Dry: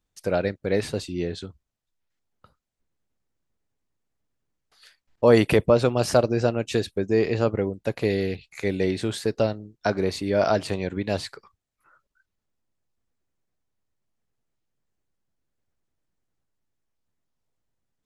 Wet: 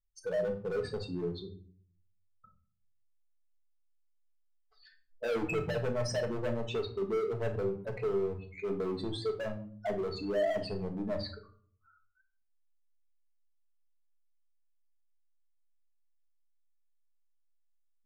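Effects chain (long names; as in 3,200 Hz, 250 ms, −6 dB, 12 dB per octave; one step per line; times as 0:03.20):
expanding power law on the bin magnitudes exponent 3
hard clipping −24 dBFS, distortion −6 dB
rectangular room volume 550 cubic metres, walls furnished, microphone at 1.5 metres
level −8 dB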